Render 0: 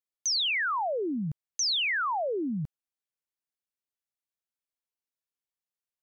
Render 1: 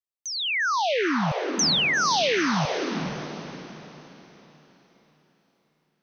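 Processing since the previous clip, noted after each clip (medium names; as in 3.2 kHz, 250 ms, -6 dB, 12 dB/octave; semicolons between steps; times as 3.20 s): level rider gain up to 12 dB; echo that smears into a reverb 465 ms, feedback 40%, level -4 dB; trim -7 dB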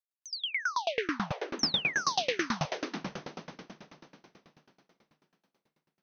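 bass shelf 330 Hz -3 dB; sawtooth tremolo in dB decaying 9.2 Hz, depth 27 dB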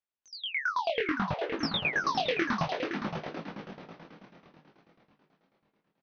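chorus 0.6 Hz, delay 18 ms, depth 6.1 ms; distance through air 230 m; delay 516 ms -8 dB; trim +6 dB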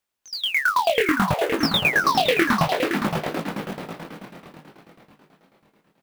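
in parallel at -3 dB: compression 6:1, threshold -39 dBFS, peak gain reduction 14 dB; on the sum: short-mantissa float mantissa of 2-bit; trim +8.5 dB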